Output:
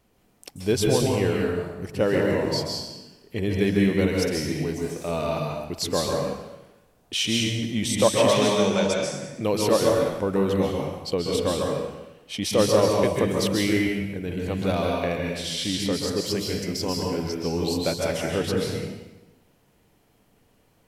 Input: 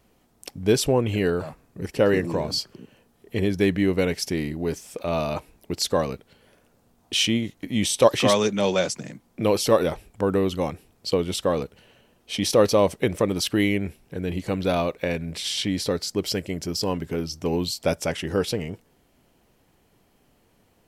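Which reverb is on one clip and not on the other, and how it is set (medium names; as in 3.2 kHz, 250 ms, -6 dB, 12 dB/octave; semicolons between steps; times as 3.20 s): plate-style reverb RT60 1 s, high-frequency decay 0.9×, pre-delay 120 ms, DRR -1 dB; trim -3.5 dB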